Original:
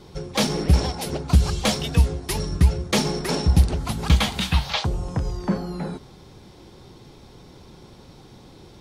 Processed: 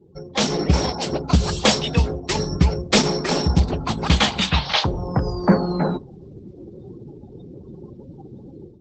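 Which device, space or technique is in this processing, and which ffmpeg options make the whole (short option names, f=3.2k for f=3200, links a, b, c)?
video call: -af "afftdn=nr=34:nf=-41,highpass=f=170:p=1,dynaudnorm=f=320:g=3:m=14dB,volume=-1.5dB" -ar 48000 -c:a libopus -b:a 12k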